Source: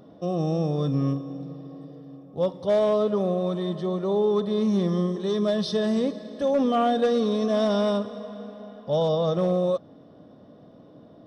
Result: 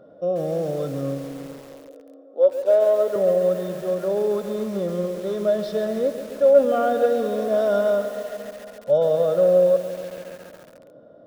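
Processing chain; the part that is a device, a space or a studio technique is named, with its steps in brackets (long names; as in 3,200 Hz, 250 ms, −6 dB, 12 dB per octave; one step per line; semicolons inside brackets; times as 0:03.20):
inside a helmet (high-shelf EQ 4,100 Hz −5.5 dB; hollow resonant body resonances 560/1,400 Hz, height 17 dB, ringing for 25 ms)
0:01.58–0:03.16: elliptic high-pass filter 250 Hz, stop band 50 dB
feedback echo at a low word length 138 ms, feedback 80%, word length 5 bits, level −11.5 dB
level −7 dB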